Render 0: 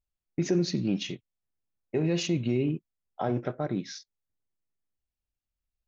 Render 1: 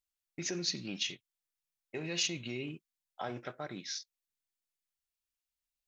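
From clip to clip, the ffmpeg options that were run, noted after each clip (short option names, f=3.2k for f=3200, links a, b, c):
-af "tiltshelf=f=970:g=-9.5,volume=-6dB"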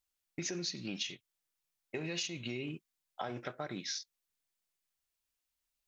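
-af "acompressor=threshold=-39dB:ratio=6,volume=4dB"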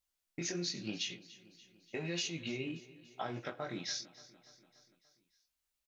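-af "flanger=delay=17:depth=6.5:speed=0.92,aecho=1:1:290|580|870|1160|1450:0.112|0.0662|0.0391|0.023|0.0136,volume=3dB"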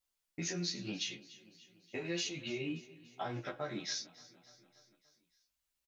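-filter_complex "[0:a]asplit=2[a][b];[b]adelay=11.2,afreqshift=0.81[c];[a][c]amix=inputs=2:normalize=1,volume=3dB"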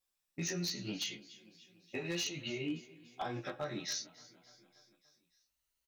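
-af "afftfilt=real='re*pow(10,6/40*sin(2*PI*(1.8*log(max(b,1)*sr/1024/100)/log(2)-(0.61)*(pts-256)/sr)))':imag='im*pow(10,6/40*sin(2*PI*(1.8*log(max(b,1)*sr/1024/100)/log(2)-(0.61)*(pts-256)/sr)))':win_size=1024:overlap=0.75,aeval=exprs='0.0355*(abs(mod(val(0)/0.0355+3,4)-2)-1)':c=same"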